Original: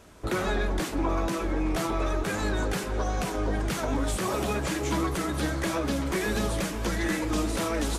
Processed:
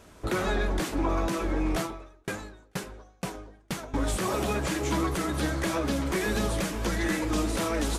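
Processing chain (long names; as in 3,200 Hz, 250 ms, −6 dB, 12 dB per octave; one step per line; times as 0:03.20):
0:01.80–0:03.94: tremolo with a ramp in dB decaying 2.1 Hz, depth 39 dB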